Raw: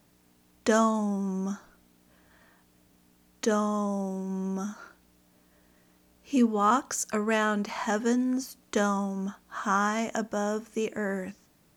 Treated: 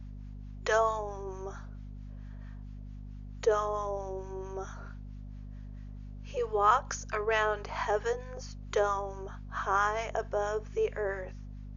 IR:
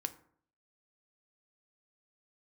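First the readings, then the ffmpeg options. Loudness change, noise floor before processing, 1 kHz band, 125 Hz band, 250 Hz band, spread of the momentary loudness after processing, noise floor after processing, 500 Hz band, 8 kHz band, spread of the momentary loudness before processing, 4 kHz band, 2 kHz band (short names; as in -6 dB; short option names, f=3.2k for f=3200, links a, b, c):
-3.0 dB, -64 dBFS, -1.0 dB, n/a, -19.5 dB, 19 LU, -43 dBFS, -0.5 dB, -9.0 dB, 11 LU, -3.5 dB, -1.5 dB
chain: -filter_complex "[0:a]highshelf=f=4.4k:g=-9.5,afftfilt=real='re*between(b*sr/4096,370,6900)':imag='im*between(b*sr/4096,370,6900)':win_size=4096:overlap=0.75,acrossover=split=880[a][b];[a]aeval=exprs='val(0)*(1-0.7/2+0.7/2*cos(2*PI*4.5*n/s))':c=same[c];[b]aeval=exprs='val(0)*(1-0.7/2-0.7/2*cos(2*PI*4.5*n/s))':c=same[d];[c][d]amix=inputs=2:normalize=0,aeval=exprs='val(0)+0.00562*(sin(2*PI*50*n/s)+sin(2*PI*2*50*n/s)/2+sin(2*PI*3*50*n/s)/3+sin(2*PI*4*50*n/s)/4+sin(2*PI*5*50*n/s)/5)':c=same,volume=3dB"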